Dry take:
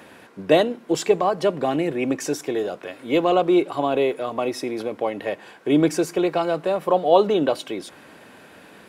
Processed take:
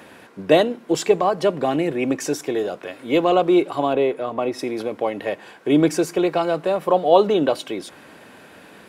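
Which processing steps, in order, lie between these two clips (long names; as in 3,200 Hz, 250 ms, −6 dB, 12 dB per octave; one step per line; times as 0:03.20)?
0:03.93–0:04.59: high-shelf EQ 3,400 Hz −9.5 dB
level +1.5 dB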